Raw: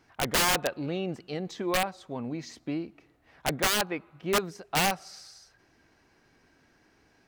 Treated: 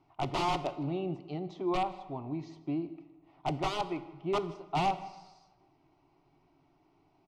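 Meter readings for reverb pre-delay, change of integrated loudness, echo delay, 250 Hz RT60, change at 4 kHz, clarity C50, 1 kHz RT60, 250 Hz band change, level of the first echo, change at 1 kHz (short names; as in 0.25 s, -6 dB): 3 ms, -5.5 dB, 0.157 s, 1.3 s, -11.0 dB, 13.5 dB, 1.3 s, -2.0 dB, -22.0 dB, -1.0 dB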